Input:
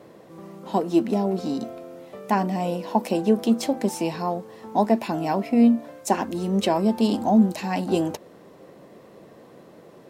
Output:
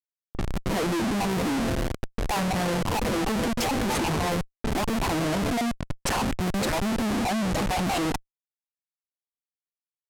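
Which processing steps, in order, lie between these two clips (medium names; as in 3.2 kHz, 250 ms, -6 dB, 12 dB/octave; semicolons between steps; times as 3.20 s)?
random holes in the spectrogram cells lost 25%; Schmitt trigger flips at -35 dBFS; level-controlled noise filter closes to 900 Hz, open at -23.5 dBFS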